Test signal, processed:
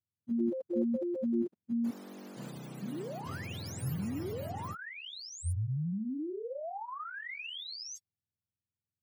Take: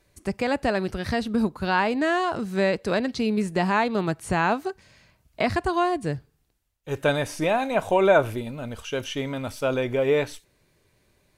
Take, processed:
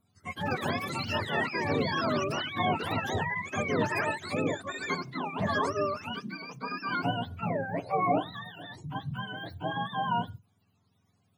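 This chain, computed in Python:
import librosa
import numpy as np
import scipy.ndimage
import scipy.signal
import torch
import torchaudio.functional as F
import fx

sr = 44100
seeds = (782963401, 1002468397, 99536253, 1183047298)

y = fx.octave_mirror(x, sr, pivot_hz=650.0)
y = fx.echo_pitch(y, sr, ms=196, semitones=7, count=2, db_per_echo=-3.0)
y = F.gain(torch.from_numpy(y), -6.5).numpy()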